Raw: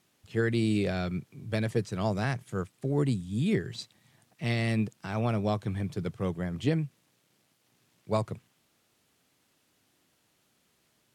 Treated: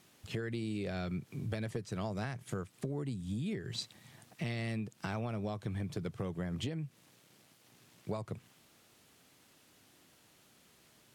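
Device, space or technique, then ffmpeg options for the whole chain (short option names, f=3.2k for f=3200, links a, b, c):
serial compression, peaks first: -af "acompressor=threshold=-36dB:ratio=6,acompressor=threshold=-42dB:ratio=2.5,volume=6dB"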